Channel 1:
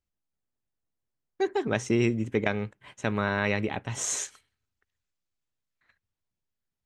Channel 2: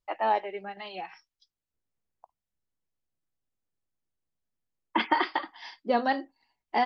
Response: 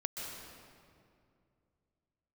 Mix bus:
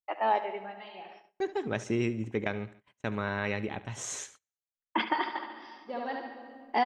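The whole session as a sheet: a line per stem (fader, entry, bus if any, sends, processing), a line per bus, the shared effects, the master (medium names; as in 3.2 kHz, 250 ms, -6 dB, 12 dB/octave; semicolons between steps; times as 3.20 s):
-5.0 dB, 0.00 s, no send, echo send -16.5 dB, treble shelf 8.2 kHz -7.5 dB
-2.5 dB, 0.00 s, send -14 dB, echo send -12 dB, band-stop 4.2 kHz, Q 11; auto duck -19 dB, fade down 0.90 s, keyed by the first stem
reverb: on, RT60 2.4 s, pre-delay 119 ms
echo: feedback delay 71 ms, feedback 49%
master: gate -51 dBFS, range -26 dB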